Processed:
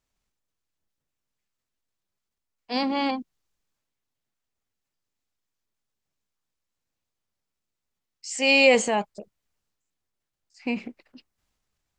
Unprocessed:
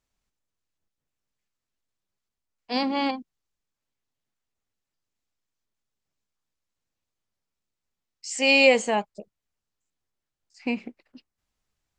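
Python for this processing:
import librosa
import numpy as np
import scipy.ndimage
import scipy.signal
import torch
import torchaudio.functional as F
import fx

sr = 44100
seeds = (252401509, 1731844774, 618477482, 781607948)

y = fx.transient(x, sr, attack_db=-1, sustain_db=5)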